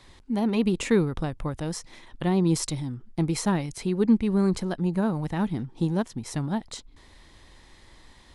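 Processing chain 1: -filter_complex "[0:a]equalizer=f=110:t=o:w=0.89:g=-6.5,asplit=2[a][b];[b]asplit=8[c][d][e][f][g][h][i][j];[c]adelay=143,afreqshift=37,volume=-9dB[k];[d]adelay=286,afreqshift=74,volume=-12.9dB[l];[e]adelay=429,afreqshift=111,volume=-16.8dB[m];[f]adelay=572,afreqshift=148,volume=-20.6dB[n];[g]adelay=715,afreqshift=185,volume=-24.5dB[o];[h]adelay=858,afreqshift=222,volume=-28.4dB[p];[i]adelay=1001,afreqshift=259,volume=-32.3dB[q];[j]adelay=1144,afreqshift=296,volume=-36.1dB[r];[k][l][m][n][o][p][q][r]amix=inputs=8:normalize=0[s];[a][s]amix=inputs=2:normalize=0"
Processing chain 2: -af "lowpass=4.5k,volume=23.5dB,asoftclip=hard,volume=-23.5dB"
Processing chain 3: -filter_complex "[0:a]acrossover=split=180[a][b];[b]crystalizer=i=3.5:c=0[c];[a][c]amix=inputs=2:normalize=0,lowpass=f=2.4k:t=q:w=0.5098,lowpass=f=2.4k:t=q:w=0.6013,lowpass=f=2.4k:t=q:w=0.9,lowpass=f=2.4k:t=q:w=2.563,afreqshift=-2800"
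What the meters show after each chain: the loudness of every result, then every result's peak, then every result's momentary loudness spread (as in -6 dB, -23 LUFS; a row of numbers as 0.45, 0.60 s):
-27.0, -30.0, -23.0 LUFS; -10.5, -23.5, -11.0 dBFS; 10, 7, 10 LU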